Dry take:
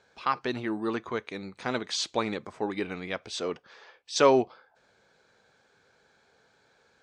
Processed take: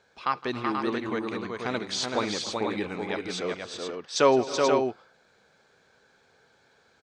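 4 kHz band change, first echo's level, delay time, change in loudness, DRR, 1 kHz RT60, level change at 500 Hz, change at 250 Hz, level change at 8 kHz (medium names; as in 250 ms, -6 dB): +2.0 dB, -19.0 dB, 163 ms, +1.5 dB, no reverb, no reverb, +2.0 dB, +2.0 dB, +2.0 dB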